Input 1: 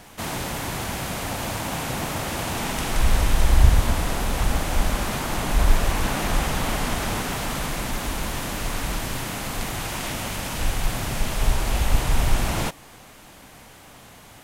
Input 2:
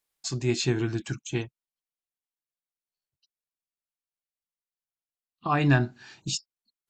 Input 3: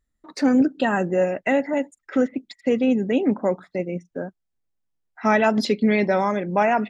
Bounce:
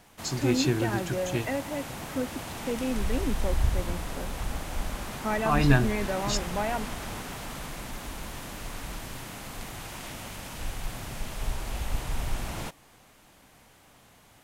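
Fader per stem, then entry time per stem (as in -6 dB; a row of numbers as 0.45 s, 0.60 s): -10.5 dB, -0.5 dB, -11.0 dB; 0.00 s, 0.00 s, 0.00 s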